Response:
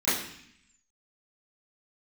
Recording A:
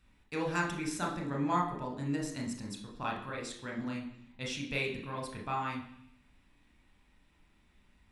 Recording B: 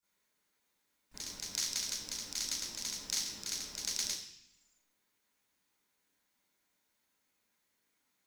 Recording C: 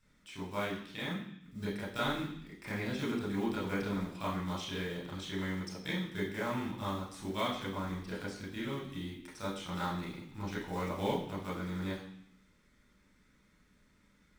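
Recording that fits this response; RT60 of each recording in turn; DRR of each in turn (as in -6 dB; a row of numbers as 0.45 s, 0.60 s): B; 0.65 s, 0.65 s, 0.65 s; -1.0 dB, -17.0 dB, -8.0 dB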